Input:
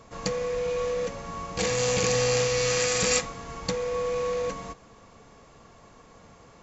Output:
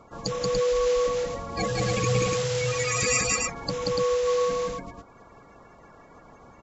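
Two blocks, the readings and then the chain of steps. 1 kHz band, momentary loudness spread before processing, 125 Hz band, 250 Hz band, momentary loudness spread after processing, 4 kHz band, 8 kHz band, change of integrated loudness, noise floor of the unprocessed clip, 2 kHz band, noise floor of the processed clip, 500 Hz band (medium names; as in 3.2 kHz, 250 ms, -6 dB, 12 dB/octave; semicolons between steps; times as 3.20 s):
+3.0 dB, 11 LU, +4.0 dB, +2.0 dB, 8 LU, -1.0 dB, no reading, +1.0 dB, -53 dBFS, +1.0 dB, -52 dBFS, +2.0 dB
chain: coarse spectral quantiser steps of 30 dB; reverb removal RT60 0.54 s; loudspeakers at several distances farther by 62 m -1 dB, 99 m -3 dB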